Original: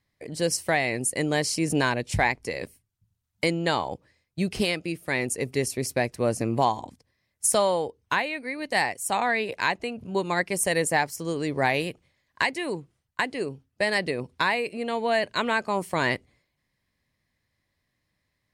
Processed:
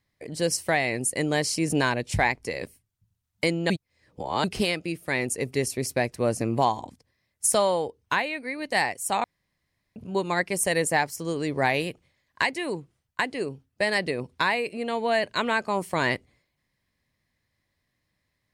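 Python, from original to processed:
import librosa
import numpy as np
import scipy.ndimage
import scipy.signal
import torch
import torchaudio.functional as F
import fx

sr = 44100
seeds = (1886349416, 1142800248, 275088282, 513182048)

y = fx.edit(x, sr, fx.reverse_span(start_s=3.7, length_s=0.74),
    fx.room_tone_fill(start_s=9.24, length_s=0.72), tone=tone)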